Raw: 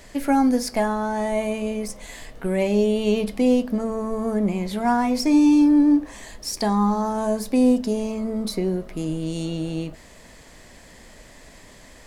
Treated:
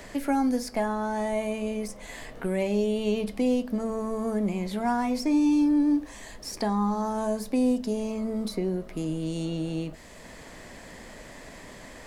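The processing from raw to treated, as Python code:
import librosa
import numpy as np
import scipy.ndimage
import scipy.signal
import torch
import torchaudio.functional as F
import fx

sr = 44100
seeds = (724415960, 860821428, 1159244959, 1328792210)

y = fx.band_squash(x, sr, depth_pct=40)
y = y * librosa.db_to_amplitude(-5.5)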